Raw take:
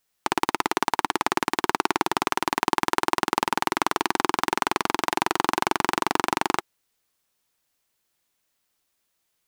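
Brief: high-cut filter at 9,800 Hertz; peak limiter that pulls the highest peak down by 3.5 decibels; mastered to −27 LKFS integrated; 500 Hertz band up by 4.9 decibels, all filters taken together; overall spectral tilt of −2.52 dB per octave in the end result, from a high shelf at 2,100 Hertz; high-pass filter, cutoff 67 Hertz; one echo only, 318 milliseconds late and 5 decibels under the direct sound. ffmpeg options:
ffmpeg -i in.wav -af "highpass=67,lowpass=9800,equalizer=frequency=500:width_type=o:gain=7.5,highshelf=frequency=2100:gain=-6.5,alimiter=limit=-6.5dB:level=0:latency=1,aecho=1:1:318:0.562,volume=-2dB" out.wav

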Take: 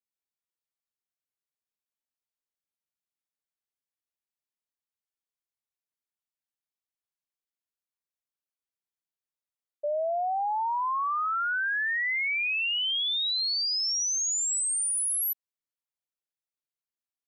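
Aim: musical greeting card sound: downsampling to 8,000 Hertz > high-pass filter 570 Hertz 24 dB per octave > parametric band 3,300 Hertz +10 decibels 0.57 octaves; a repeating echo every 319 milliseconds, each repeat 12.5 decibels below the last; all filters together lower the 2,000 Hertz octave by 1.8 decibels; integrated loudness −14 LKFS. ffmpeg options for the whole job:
ffmpeg -i in.wav -af "equalizer=frequency=2000:width_type=o:gain=-5,aecho=1:1:319|638|957:0.237|0.0569|0.0137,aresample=8000,aresample=44100,highpass=frequency=570:width=0.5412,highpass=frequency=570:width=1.3066,equalizer=frequency=3300:width_type=o:width=0.57:gain=10,volume=11dB" out.wav

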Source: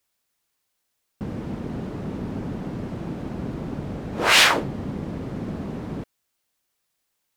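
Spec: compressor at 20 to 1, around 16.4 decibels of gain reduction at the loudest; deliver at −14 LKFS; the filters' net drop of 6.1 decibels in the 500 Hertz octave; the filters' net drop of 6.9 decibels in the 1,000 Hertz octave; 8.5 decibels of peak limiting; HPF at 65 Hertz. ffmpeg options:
ffmpeg -i in.wav -af "highpass=65,equalizer=frequency=500:width_type=o:gain=-6,equalizer=frequency=1000:width_type=o:gain=-7.5,acompressor=threshold=-28dB:ratio=20,volume=21.5dB,alimiter=limit=-4.5dB:level=0:latency=1" out.wav

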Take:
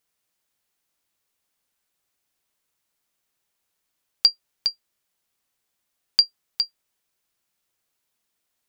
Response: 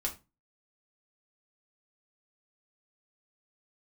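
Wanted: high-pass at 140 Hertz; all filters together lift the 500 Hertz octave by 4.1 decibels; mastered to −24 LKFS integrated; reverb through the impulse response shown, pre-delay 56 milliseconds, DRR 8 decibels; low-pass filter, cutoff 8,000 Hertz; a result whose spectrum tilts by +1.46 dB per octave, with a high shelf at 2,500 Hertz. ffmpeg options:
-filter_complex "[0:a]highpass=140,lowpass=8000,equalizer=frequency=500:width_type=o:gain=5.5,highshelf=frequency=2500:gain=-3.5,asplit=2[link_01][link_02];[1:a]atrim=start_sample=2205,adelay=56[link_03];[link_02][link_03]afir=irnorm=-1:irlink=0,volume=-10.5dB[link_04];[link_01][link_04]amix=inputs=2:normalize=0,volume=2dB"

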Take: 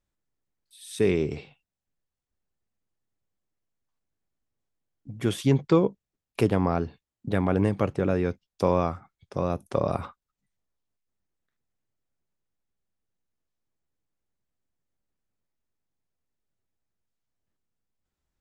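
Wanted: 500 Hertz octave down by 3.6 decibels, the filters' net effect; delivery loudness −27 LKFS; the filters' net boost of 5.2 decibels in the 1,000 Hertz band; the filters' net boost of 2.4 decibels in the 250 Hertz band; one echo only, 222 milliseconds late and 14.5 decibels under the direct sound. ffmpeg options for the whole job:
ffmpeg -i in.wav -af "equalizer=frequency=250:width_type=o:gain=5.5,equalizer=frequency=500:width_type=o:gain=-8.5,equalizer=frequency=1000:width_type=o:gain=8.5,aecho=1:1:222:0.188,volume=-1.5dB" out.wav

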